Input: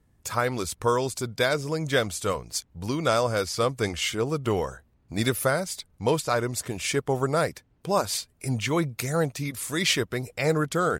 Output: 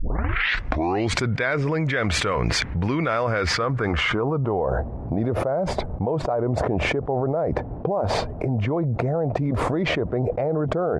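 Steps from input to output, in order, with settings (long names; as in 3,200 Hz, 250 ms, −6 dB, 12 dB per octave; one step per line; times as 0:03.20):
turntable start at the beginning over 1.20 s
low-pass filter sweep 2,000 Hz → 710 Hz, 0:03.39–0:04.67
envelope flattener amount 100%
level −7.5 dB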